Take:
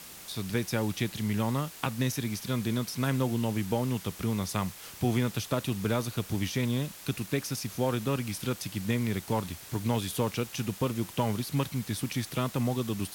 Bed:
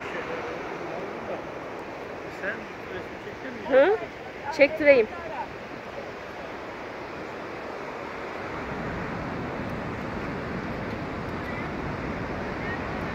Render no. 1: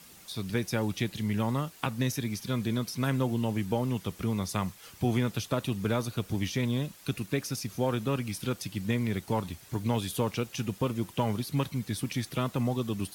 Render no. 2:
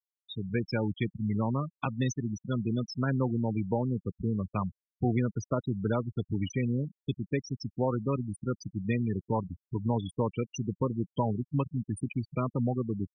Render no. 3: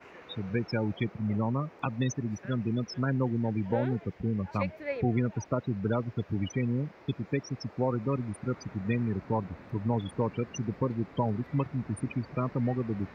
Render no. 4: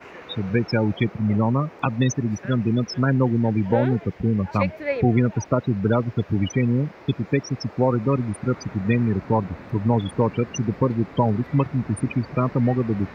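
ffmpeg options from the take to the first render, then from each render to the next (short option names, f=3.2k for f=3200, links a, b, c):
-af "afftdn=nr=8:nf=-47"
-af "afftfilt=real='re*gte(hypot(re,im),0.0562)':imag='im*gte(hypot(re,im),0.0562)':win_size=1024:overlap=0.75,highshelf=f=4.2k:g=10"
-filter_complex "[1:a]volume=-17.5dB[a];[0:a][a]amix=inputs=2:normalize=0"
-af "volume=9dB"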